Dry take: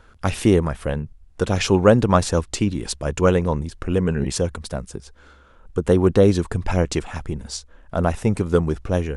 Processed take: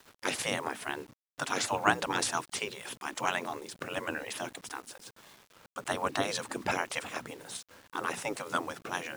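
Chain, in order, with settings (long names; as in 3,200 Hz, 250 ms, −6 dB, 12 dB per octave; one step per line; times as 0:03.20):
mains-hum notches 60/120/180/240/300 Hz
gate on every frequency bin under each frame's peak −15 dB weak
high-pass filter 88 Hz 24 dB per octave
bit reduction 9 bits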